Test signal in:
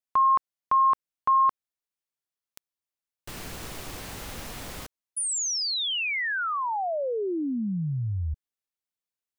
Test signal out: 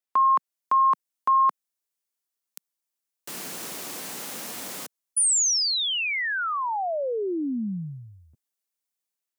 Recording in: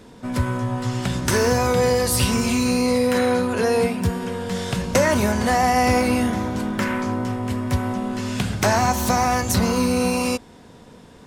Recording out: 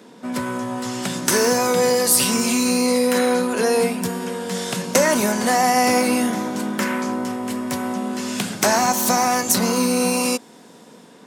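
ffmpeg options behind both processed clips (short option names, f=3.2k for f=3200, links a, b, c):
-filter_complex "[0:a]highpass=f=180:w=0.5412,highpass=f=180:w=1.3066,acrossover=split=5500[a][b];[b]dynaudnorm=f=180:g=5:m=7dB[c];[a][c]amix=inputs=2:normalize=0,volume=1dB"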